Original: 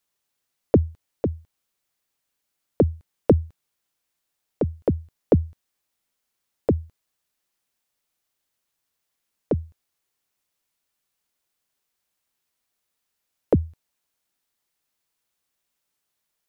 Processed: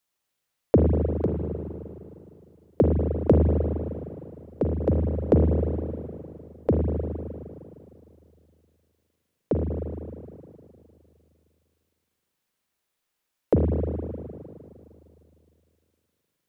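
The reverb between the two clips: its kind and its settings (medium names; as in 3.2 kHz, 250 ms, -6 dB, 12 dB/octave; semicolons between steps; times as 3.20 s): spring tank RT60 2.7 s, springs 38/51 ms, chirp 35 ms, DRR 0 dB; trim -2 dB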